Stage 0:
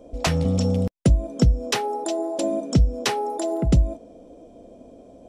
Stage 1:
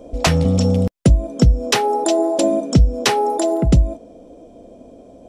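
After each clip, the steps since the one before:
speech leveller 0.5 s
level +6 dB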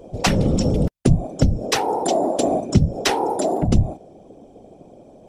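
random phases in short frames
level −3 dB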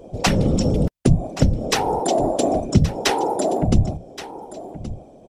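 single-tap delay 1,124 ms −14.5 dB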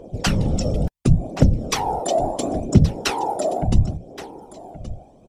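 phase shifter 0.72 Hz, delay 1.7 ms, feedback 48%
level −3.5 dB

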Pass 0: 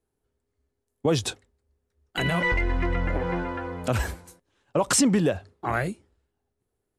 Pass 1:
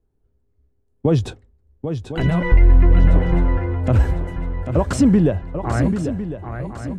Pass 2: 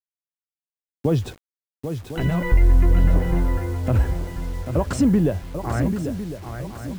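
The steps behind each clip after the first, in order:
spectral tilt −3.5 dB per octave; feedback echo with a long and a short gap by turns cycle 1,054 ms, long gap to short 3 to 1, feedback 41%, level −8.5 dB
bit reduction 7 bits; level −3.5 dB

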